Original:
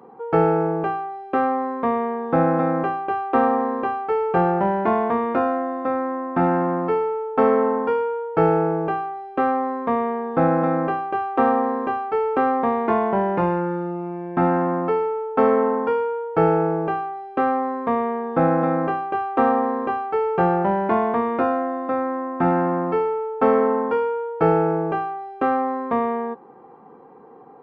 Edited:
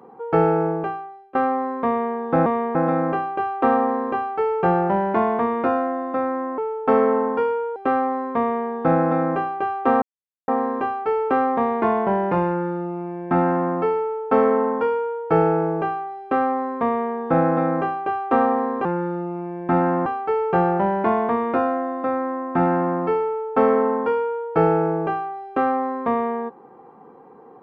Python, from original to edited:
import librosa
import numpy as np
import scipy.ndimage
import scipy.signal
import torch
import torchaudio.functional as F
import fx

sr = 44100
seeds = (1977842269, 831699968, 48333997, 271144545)

y = fx.edit(x, sr, fx.fade_out_to(start_s=0.68, length_s=0.67, floor_db=-21.0),
    fx.cut(start_s=6.29, length_s=0.79),
    fx.cut(start_s=8.26, length_s=1.02),
    fx.duplicate(start_s=9.91, length_s=0.29, to_s=2.46),
    fx.insert_silence(at_s=11.54, length_s=0.46),
    fx.duplicate(start_s=13.53, length_s=1.21, to_s=19.91), tone=tone)